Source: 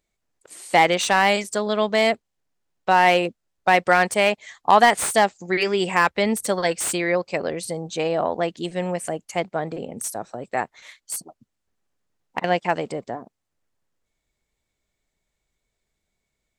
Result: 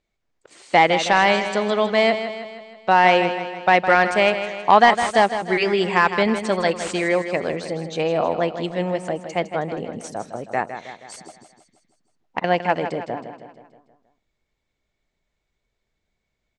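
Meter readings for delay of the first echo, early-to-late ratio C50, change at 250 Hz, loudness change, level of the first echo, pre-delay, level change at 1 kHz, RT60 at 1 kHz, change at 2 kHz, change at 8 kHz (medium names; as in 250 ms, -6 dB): 159 ms, no reverb, +2.0 dB, +2.0 dB, -10.0 dB, no reverb, +2.0 dB, no reverb, +1.5 dB, -8.5 dB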